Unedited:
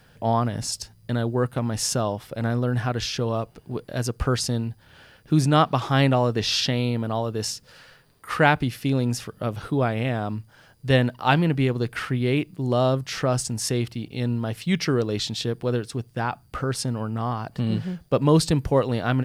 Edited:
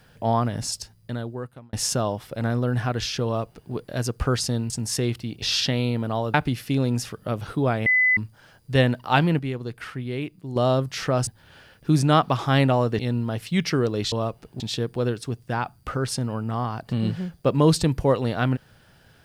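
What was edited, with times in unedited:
0.67–1.73 fade out linear
3.25–3.73 copy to 15.27
4.7–6.42 swap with 13.42–14.14
7.34–8.49 cut
10.01–10.32 bleep 2010 Hz -15.5 dBFS
11.54–12.71 gain -7 dB

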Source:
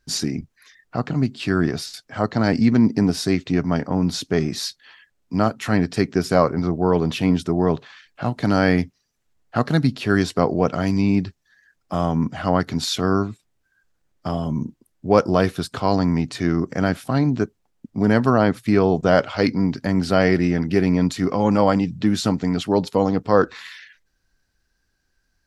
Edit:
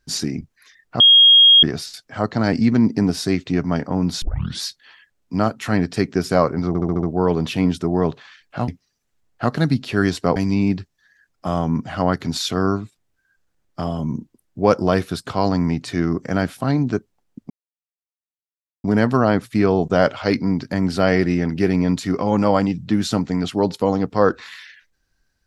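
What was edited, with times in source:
1–1.63 bleep 3260 Hz -6.5 dBFS
4.22 tape start 0.40 s
6.68 stutter 0.07 s, 6 plays
8.33–8.81 cut
10.49–10.83 cut
17.97 insert silence 1.34 s

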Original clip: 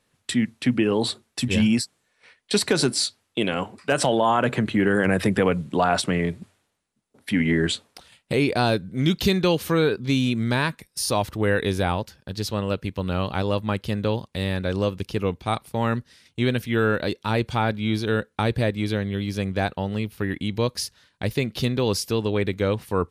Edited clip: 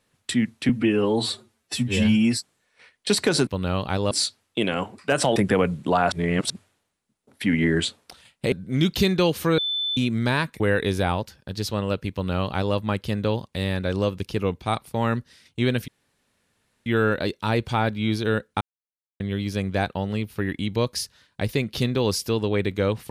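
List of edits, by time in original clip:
0.69–1.81 stretch 1.5×
4.16–5.23 cut
5.99–6.37 reverse
8.39–8.77 cut
9.83–10.22 bleep 3520 Hz -23 dBFS
10.85–11.4 cut
12.92–13.56 copy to 2.91
16.68 insert room tone 0.98 s
18.43–19.02 mute

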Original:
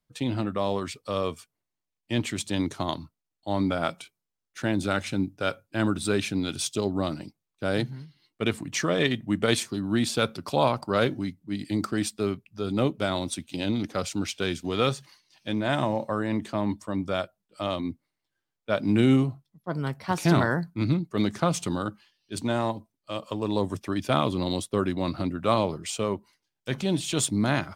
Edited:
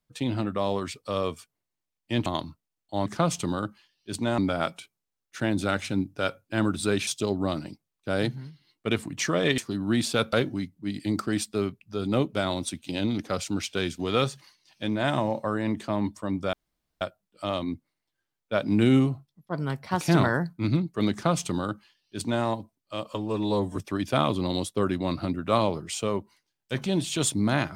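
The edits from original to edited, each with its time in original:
2.26–2.8 cut
6.29–6.62 cut
9.13–9.61 cut
10.36–10.98 cut
17.18 insert room tone 0.48 s
21.29–22.61 copy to 3.6
23.32–23.73 stretch 1.5×

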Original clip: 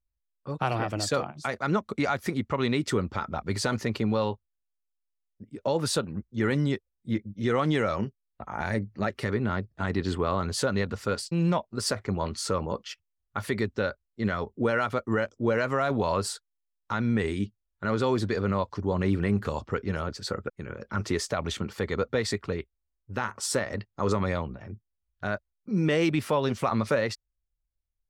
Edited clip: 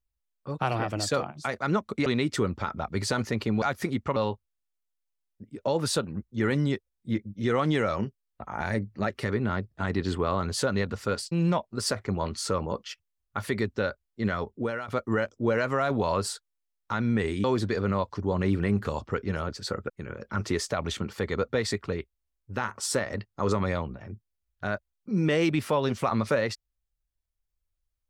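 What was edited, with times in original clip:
2.06–2.6 move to 4.16
14.43–14.88 fade out, to -12.5 dB
17.44–18.04 cut

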